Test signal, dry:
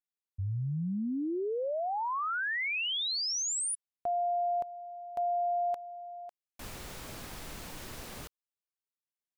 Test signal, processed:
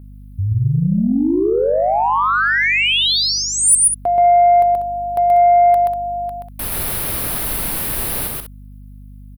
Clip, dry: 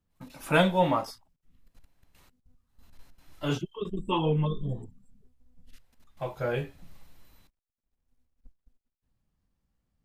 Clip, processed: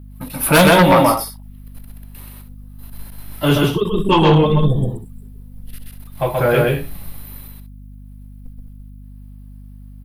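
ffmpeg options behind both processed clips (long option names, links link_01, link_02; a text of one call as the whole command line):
ffmpeg -i in.wav -filter_complex "[0:a]firequalizer=gain_entry='entry(4100,0);entry(7000,-9);entry(10000,13)':delay=0.05:min_phase=1,asplit=2[link_01][link_02];[link_02]aecho=0:1:128.3|192.4:0.794|0.282[link_03];[link_01][link_03]amix=inputs=2:normalize=0,aeval=exprs='val(0)+0.00282*(sin(2*PI*50*n/s)+sin(2*PI*2*50*n/s)/2+sin(2*PI*3*50*n/s)/3+sin(2*PI*4*50*n/s)/4+sin(2*PI*5*50*n/s)/5)':channel_layout=same,aeval=exprs='0.355*sin(PI/2*2.51*val(0)/0.355)':channel_layout=same,volume=3dB" out.wav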